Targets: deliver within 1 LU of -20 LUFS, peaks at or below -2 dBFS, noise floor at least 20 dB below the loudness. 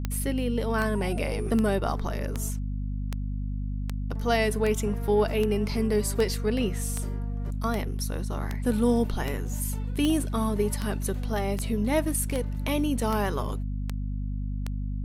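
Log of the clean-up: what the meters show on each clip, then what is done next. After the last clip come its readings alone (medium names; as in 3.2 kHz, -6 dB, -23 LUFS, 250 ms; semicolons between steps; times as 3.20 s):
clicks found 20; hum 50 Hz; highest harmonic 250 Hz; hum level -28 dBFS; loudness -28.0 LUFS; peak level -11.0 dBFS; loudness target -20.0 LUFS
-> de-click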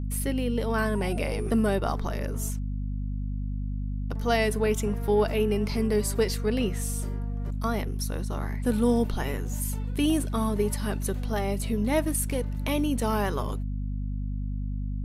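clicks found 0; hum 50 Hz; highest harmonic 250 Hz; hum level -28 dBFS
-> hum notches 50/100/150/200/250 Hz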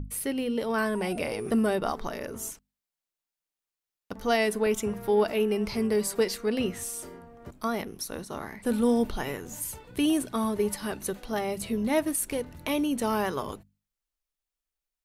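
hum not found; loudness -29.0 LUFS; peak level -14.0 dBFS; loudness target -20.0 LUFS
-> trim +9 dB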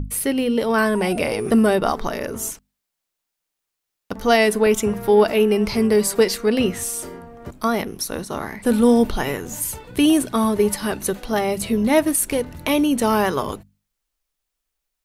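loudness -20.0 LUFS; peak level -5.0 dBFS; noise floor -81 dBFS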